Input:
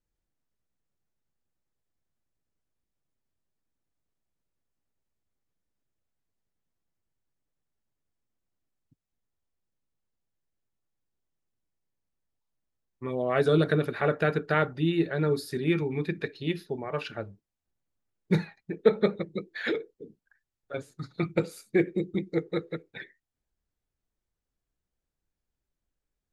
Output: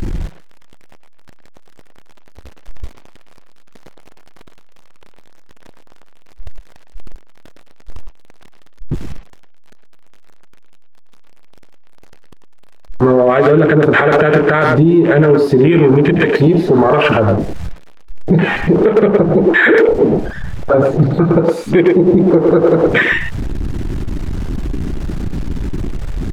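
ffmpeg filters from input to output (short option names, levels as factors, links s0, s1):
-filter_complex "[0:a]aeval=exprs='val(0)+0.5*0.0211*sgn(val(0))':c=same,aemphasis=mode=reproduction:type=75fm,asettb=1/sr,asplit=3[s0][s1][s2];[s0]atrim=end=19.064[s3];[s1]atrim=start=19.06:end=21.24,asetpts=PTS-STARTPTS,afade=t=in:d=0.004:c=qsin,afade=t=out:st=2.176:d=0.004:c=qsin,acrossover=split=2800[s4][s5];[s5]acompressor=threshold=0.00141:ratio=4:attack=1:release=60[s6];[s4][s6]amix=inputs=2:normalize=0[s7];[s2]atrim=start=21.236[s8];[s3][s7]acrossfade=d=0.004:c1=hsin:c2=qsin[s9];[s9][s8]acrossfade=d=0.004:c1=qsin:c2=hsin,afwtdn=0.0141,acompressor=threshold=0.0447:ratio=12,lowshelf=f=210:g=-5.5,asplit=2[s10][s11];[s11]adelay=110,highpass=300,lowpass=3400,asoftclip=type=hard:threshold=0.0473,volume=0.447[s12];[s10][s12]amix=inputs=2:normalize=0,alimiter=level_in=26.6:limit=0.891:release=50:level=0:latency=1,volume=0.891"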